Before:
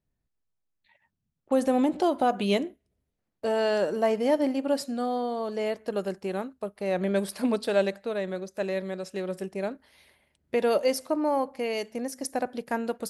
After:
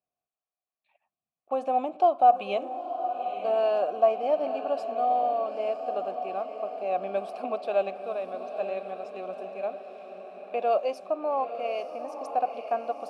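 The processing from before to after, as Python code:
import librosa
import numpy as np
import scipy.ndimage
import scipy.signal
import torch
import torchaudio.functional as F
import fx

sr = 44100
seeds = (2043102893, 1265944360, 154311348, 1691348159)

y = fx.vowel_filter(x, sr, vowel='a')
y = fx.echo_diffused(y, sr, ms=922, feedback_pct=60, wet_db=-9.5)
y = y * 10.0 ** (8.5 / 20.0)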